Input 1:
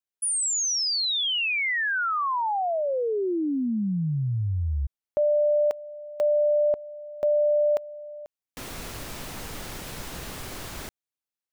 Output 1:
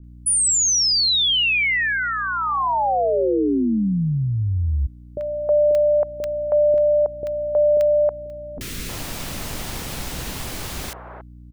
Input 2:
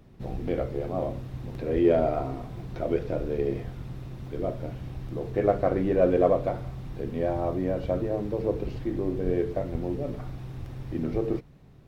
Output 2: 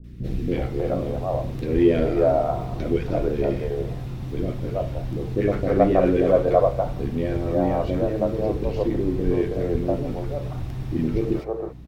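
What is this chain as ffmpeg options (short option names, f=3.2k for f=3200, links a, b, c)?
-filter_complex "[0:a]adynamicequalizer=threshold=0.0158:dfrequency=120:dqfactor=0.91:tfrequency=120:tqfactor=0.91:attack=5:release=100:ratio=0.375:range=1.5:mode=cutabove:tftype=bell,aeval=exprs='val(0)+0.00398*(sin(2*PI*60*n/s)+sin(2*PI*2*60*n/s)/2+sin(2*PI*3*60*n/s)/3+sin(2*PI*4*60*n/s)/4+sin(2*PI*5*60*n/s)/5)':c=same,acrossover=split=450|1400[a][b][c];[c]adelay=40[d];[b]adelay=320[e];[a][e][d]amix=inputs=3:normalize=0,volume=7.5dB"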